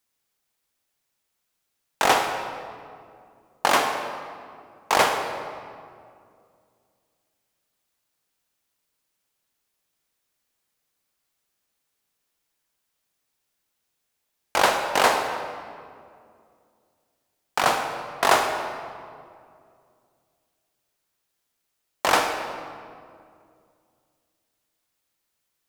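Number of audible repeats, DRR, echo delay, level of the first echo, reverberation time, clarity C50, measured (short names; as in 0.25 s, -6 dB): none, 5.0 dB, none, none, 2.3 s, 5.5 dB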